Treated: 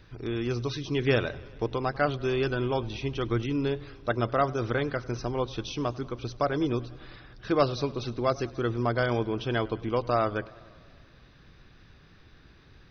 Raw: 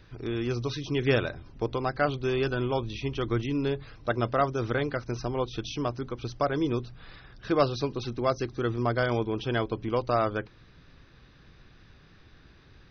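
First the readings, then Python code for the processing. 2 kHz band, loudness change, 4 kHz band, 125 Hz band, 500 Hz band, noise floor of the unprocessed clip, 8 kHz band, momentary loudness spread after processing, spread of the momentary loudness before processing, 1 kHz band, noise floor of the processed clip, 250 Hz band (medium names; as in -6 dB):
0.0 dB, 0.0 dB, 0.0 dB, 0.0 dB, 0.0 dB, -56 dBFS, no reading, 8 LU, 7 LU, 0.0 dB, -55 dBFS, 0.0 dB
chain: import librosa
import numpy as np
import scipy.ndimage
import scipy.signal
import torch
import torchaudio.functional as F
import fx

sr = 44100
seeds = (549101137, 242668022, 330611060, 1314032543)

y = fx.echo_warbled(x, sr, ms=97, feedback_pct=71, rate_hz=2.8, cents=95, wet_db=-22.0)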